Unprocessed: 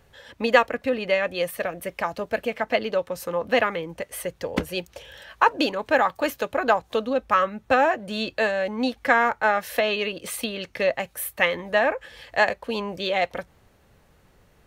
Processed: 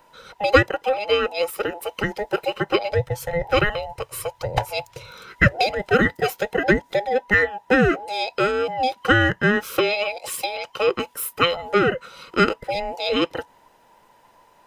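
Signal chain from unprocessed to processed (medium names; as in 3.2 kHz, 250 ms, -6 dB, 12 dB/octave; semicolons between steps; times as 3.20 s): every band turned upside down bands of 1 kHz; 2.92–5.11 s: resonant low shelf 160 Hz +10.5 dB, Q 3; trim +2.5 dB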